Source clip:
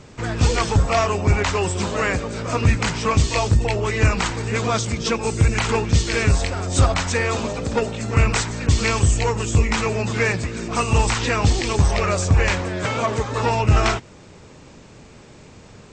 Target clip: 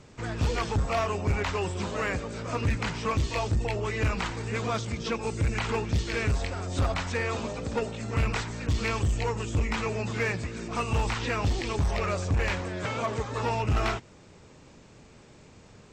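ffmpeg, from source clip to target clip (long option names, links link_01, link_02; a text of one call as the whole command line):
ffmpeg -i in.wav -filter_complex "[0:a]acrossover=split=4700[link_01][link_02];[link_02]acompressor=threshold=-39dB:ratio=4:attack=1:release=60[link_03];[link_01][link_03]amix=inputs=2:normalize=0,asoftclip=type=hard:threshold=-12.5dB,volume=-8dB" out.wav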